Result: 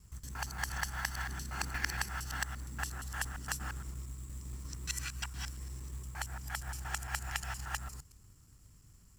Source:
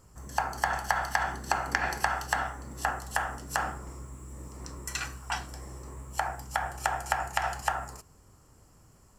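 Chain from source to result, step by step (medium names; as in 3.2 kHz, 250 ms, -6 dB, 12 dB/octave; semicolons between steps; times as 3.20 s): time reversed locally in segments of 116 ms; amplifier tone stack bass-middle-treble 6-0-2; short-mantissa float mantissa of 2-bit; trim +13 dB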